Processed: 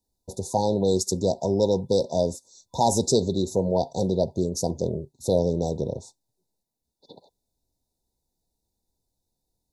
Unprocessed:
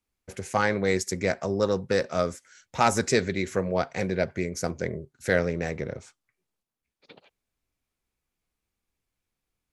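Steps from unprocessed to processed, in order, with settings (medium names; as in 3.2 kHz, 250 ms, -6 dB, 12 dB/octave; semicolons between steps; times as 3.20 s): FFT band-reject 1–3.5 kHz; in parallel at -3 dB: peak limiter -19 dBFS, peak gain reduction 9.5 dB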